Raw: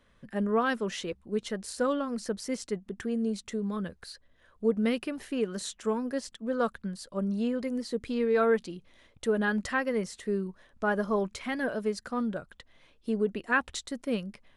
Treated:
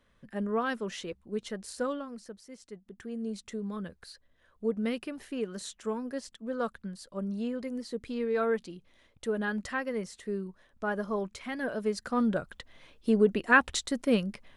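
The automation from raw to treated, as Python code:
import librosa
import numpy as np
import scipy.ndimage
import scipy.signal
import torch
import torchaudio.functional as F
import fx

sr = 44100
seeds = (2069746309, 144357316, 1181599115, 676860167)

y = fx.gain(x, sr, db=fx.line((1.82, -3.5), (2.48, -16.0), (3.38, -4.0), (11.51, -4.0), (12.35, 5.0)))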